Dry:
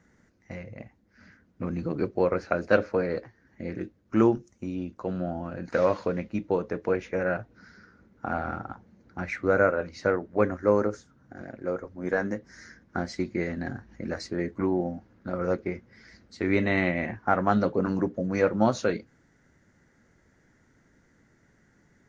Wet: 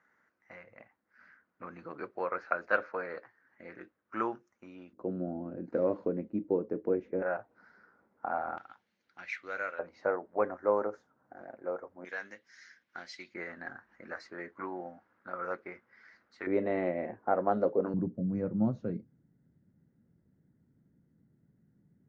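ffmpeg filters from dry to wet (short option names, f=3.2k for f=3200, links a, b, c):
-af "asetnsamples=n=441:p=0,asendcmd='4.93 bandpass f 320;7.22 bandpass f 850;8.58 bandpass f 3200;9.79 bandpass f 810;12.05 bandpass f 3000;13.34 bandpass f 1300;16.47 bandpass f 520;17.94 bandpass f 160',bandpass=f=1.3k:t=q:w=1.6:csg=0"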